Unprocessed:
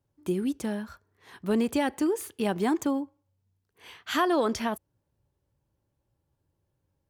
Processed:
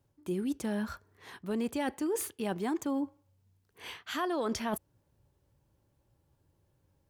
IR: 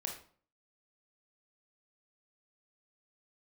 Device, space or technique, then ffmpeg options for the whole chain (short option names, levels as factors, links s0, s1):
compression on the reversed sound: -af "areverse,acompressor=threshold=0.0158:ratio=5,areverse,volume=1.78"